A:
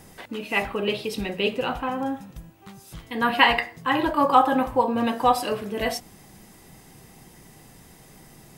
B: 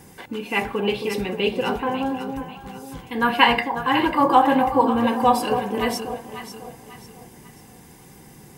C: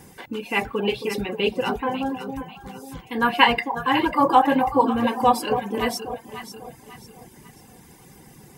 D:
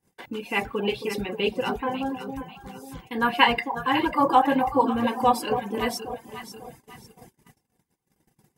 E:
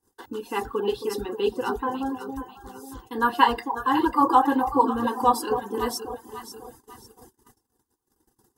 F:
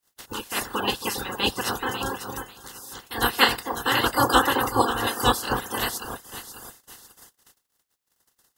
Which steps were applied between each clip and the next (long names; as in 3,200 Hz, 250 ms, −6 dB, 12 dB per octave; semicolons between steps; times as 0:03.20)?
parametric band 4,100 Hz −3 dB 0.68 octaves; notch comb filter 640 Hz; on a send: delay that swaps between a low-pass and a high-pass 272 ms, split 860 Hz, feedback 61%, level −6 dB; on the sum: level +3 dB
reverb reduction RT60 0.63 s
noise gate −44 dBFS, range −33 dB; level −2.5 dB
phaser with its sweep stopped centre 620 Hz, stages 6; level +3 dB
ceiling on every frequency bin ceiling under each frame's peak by 30 dB